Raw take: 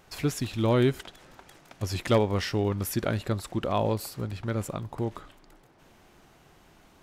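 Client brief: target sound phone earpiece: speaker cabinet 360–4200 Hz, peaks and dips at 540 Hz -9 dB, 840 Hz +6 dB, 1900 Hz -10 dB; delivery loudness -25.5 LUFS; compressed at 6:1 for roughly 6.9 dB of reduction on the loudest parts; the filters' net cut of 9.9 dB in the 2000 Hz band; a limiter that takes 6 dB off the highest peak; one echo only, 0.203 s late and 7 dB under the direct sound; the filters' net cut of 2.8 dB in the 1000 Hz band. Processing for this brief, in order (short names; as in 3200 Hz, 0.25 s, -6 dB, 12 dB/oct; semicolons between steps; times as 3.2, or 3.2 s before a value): bell 1000 Hz -4.5 dB; bell 2000 Hz -7 dB; compressor 6:1, threshold -26 dBFS; limiter -25 dBFS; speaker cabinet 360–4200 Hz, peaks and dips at 540 Hz -9 dB, 840 Hz +6 dB, 1900 Hz -10 dB; echo 0.203 s -7 dB; gain +16.5 dB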